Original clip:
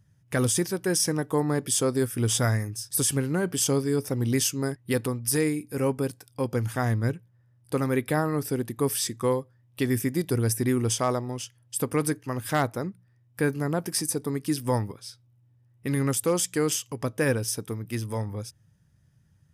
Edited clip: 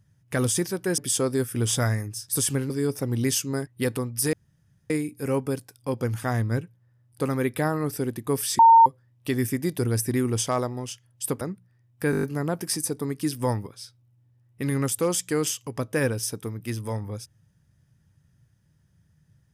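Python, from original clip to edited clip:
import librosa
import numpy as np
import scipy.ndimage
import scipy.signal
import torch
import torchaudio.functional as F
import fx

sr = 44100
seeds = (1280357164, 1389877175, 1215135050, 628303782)

y = fx.edit(x, sr, fx.cut(start_s=0.98, length_s=0.62),
    fx.cut(start_s=3.32, length_s=0.47),
    fx.insert_room_tone(at_s=5.42, length_s=0.57),
    fx.bleep(start_s=9.11, length_s=0.27, hz=913.0, db=-9.5),
    fx.cut(start_s=11.93, length_s=0.85),
    fx.stutter(start_s=13.48, slice_s=0.02, count=7), tone=tone)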